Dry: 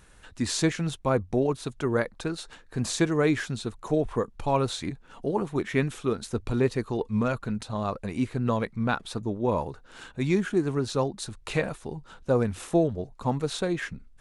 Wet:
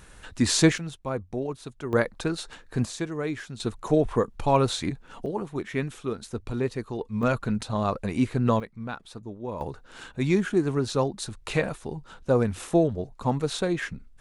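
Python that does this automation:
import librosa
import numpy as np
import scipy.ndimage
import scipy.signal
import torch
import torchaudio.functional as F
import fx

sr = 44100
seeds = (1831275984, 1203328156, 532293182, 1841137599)

y = fx.gain(x, sr, db=fx.steps((0.0, 5.5), (0.78, -6.0), (1.93, 3.0), (2.85, -7.0), (3.6, 3.5), (5.26, -3.5), (7.23, 3.5), (8.6, -8.5), (9.61, 1.5)))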